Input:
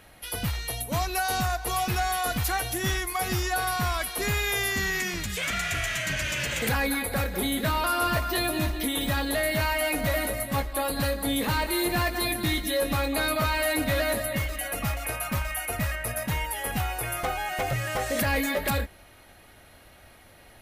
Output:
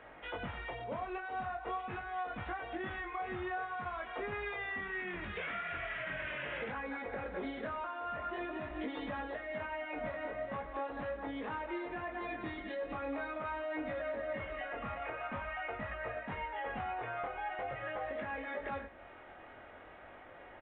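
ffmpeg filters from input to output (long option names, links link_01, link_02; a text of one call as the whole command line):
ffmpeg -i in.wav -filter_complex "[0:a]acrossover=split=290 2200:gain=0.224 1 0.0794[link_01][link_02][link_03];[link_01][link_02][link_03]amix=inputs=3:normalize=0,alimiter=limit=-23.5dB:level=0:latency=1:release=68,acompressor=threshold=-41dB:ratio=6,flanger=delay=19:depth=5.6:speed=0.44,asplit=2[link_04][link_05];[link_05]aecho=0:1:100:0.178[link_06];[link_04][link_06]amix=inputs=2:normalize=0,volume=6dB" -ar 8000 -c:a pcm_mulaw out.wav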